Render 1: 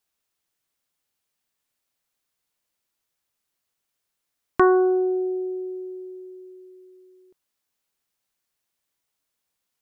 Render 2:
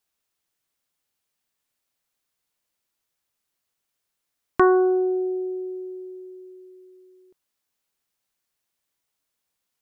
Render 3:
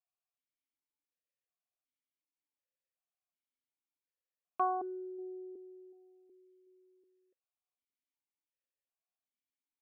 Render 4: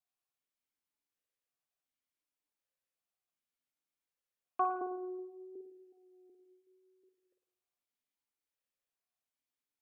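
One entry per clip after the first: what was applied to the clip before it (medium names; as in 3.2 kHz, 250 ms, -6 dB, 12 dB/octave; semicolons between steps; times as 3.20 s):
no audible change
stepped vowel filter 2.7 Hz; trim -6 dB
vibrato 0.76 Hz 16 cents; reverberation RT60 0.80 s, pre-delay 47 ms, DRR 4 dB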